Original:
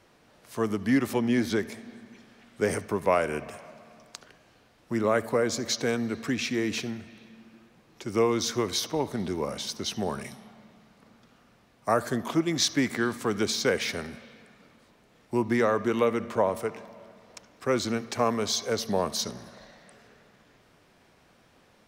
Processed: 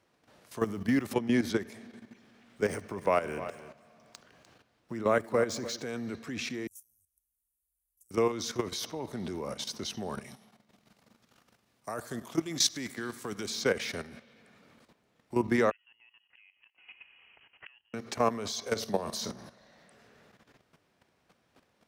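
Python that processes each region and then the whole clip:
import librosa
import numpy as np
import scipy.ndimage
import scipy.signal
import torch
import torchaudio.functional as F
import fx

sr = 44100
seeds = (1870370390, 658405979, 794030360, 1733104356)

y = fx.chain(x, sr, fx.block_float(bits=7),
    fx.low_shelf(hz=140.0, db=2.5), at=(0.6, 1.08))
y = fx.chain(y, sr, fx.median_filter(points=3),
    fx.echo_single(ms=299, db=-14.5), at=(2.0, 5.83))
y = fx.chain(y, sr, fx.cheby2_bandstop(low_hz=120.0, high_hz=4500.0, order=4, stop_db=50),
    fx.high_shelf(hz=2500.0, db=7.0), at=(6.67, 8.11))
y = fx.chain(y, sr, fx.high_shelf(hz=3800.0, db=9.5),
    fx.level_steps(step_db=10),
    fx.echo_feedback(ms=100, feedback_pct=29, wet_db=-18.5), at=(10.36, 13.5))
y = fx.chain(y, sr, fx.tremolo(hz=9.2, depth=0.37),
    fx.freq_invert(carrier_hz=3100),
    fx.gate_flip(shuts_db=-27.0, range_db=-31), at=(15.71, 17.94))
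y = fx.chain(y, sr, fx.room_flutter(wall_m=7.8, rt60_s=0.23),
    fx.band_squash(depth_pct=40), at=(18.67, 19.47))
y = scipy.signal.sosfilt(scipy.signal.butter(2, 55.0, 'highpass', fs=sr, output='sos'), y)
y = fx.level_steps(y, sr, step_db=12)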